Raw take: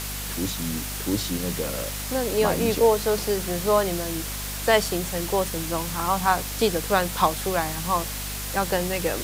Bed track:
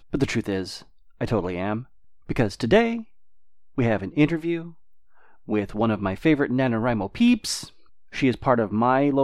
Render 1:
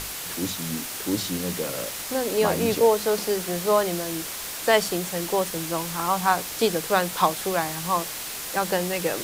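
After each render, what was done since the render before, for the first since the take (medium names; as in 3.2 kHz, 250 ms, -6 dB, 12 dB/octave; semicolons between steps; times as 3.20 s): hum notches 50/100/150/200/250 Hz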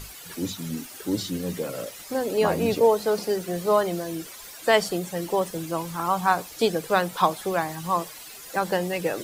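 noise reduction 13 dB, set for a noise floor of -34 dBFS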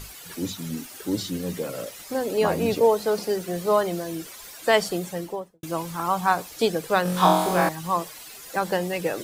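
5.05–5.63 s: studio fade out; 7.03–7.69 s: flutter echo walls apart 3.8 m, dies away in 0.89 s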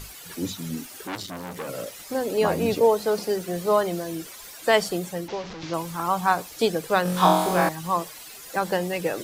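1.07–1.68 s: transformer saturation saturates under 2.5 kHz; 5.28–5.74 s: one-bit delta coder 32 kbps, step -31.5 dBFS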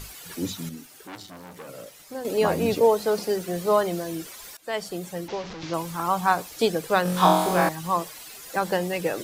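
0.69–2.25 s: feedback comb 150 Hz, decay 1.6 s; 4.57–5.33 s: fade in, from -19 dB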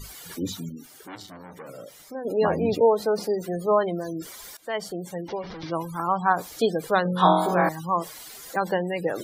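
spectral gate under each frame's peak -25 dB strong; band-stop 2.6 kHz, Q 9.8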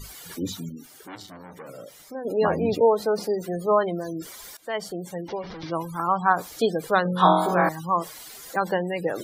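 dynamic bell 1.3 kHz, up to +3 dB, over -33 dBFS, Q 2.5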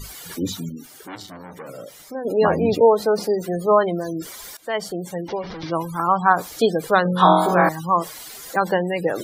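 trim +4.5 dB; peak limiter -2 dBFS, peak gain reduction 2 dB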